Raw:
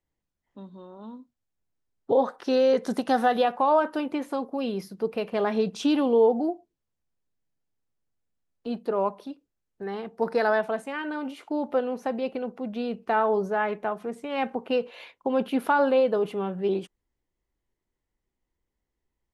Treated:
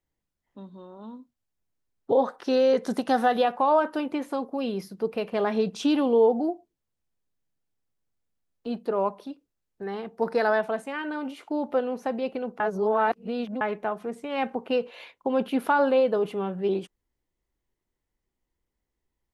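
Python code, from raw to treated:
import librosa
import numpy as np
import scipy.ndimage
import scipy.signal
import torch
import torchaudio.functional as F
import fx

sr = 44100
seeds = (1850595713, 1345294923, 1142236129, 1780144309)

y = fx.edit(x, sr, fx.reverse_span(start_s=12.6, length_s=1.01), tone=tone)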